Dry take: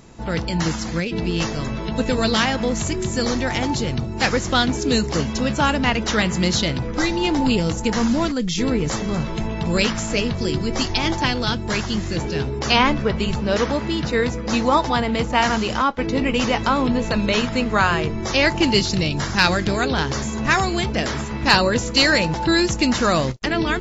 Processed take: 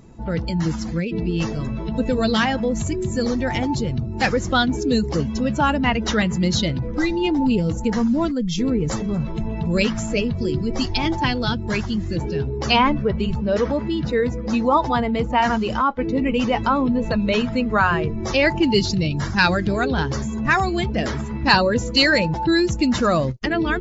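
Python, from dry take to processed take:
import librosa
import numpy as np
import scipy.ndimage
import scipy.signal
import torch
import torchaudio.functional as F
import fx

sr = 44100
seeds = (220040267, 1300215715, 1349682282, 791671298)

y = fx.spec_expand(x, sr, power=1.5)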